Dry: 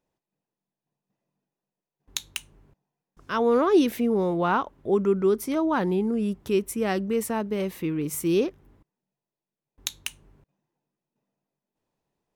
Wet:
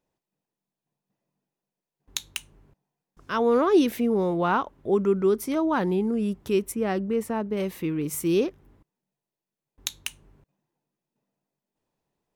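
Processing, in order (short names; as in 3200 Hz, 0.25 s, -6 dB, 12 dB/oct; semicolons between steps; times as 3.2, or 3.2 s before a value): 6.72–7.57 high shelf 2700 Hz -9.5 dB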